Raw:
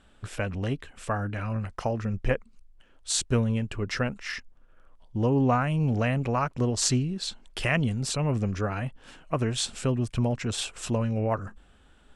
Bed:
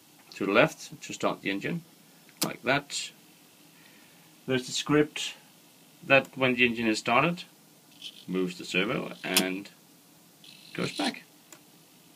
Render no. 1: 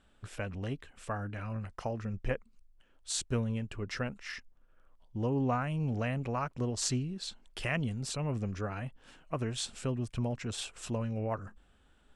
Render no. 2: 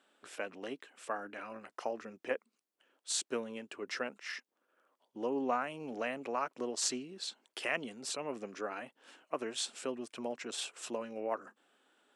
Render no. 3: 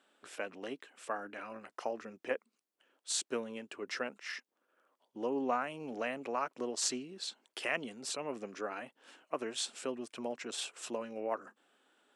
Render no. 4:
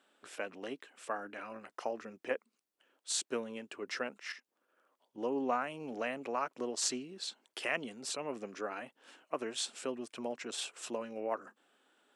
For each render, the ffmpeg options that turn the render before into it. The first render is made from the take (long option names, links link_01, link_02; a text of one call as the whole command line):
ffmpeg -i in.wav -af "volume=-7.5dB" out.wav
ffmpeg -i in.wav -af "highpass=frequency=290:width=0.5412,highpass=frequency=290:width=1.3066" out.wav
ffmpeg -i in.wav -af anull out.wav
ffmpeg -i in.wav -filter_complex "[0:a]asettb=1/sr,asplit=3[link_01][link_02][link_03];[link_01]atrim=end=4.324[link_04];[link_02]atrim=start=4.32:end=5.18,asetpts=PTS-STARTPTS,afade=type=in:duration=0.004:curve=qsin,afade=type=out:start_time=0.856:duration=0.004:curve=qsin,acompressor=threshold=-54dB:ratio=2:attack=3.2:release=140:knee=1:detection=peak[link_05];[link_03]atrim=start=5.176[link_06];[link_04][link_05]acrossfade=duration=0.004:curve1=hsin:curve2=qsin[link_07];[link_07][link_06]acrossfade=duration=0.004:curve1=qsin:curve2=hsin" out.wav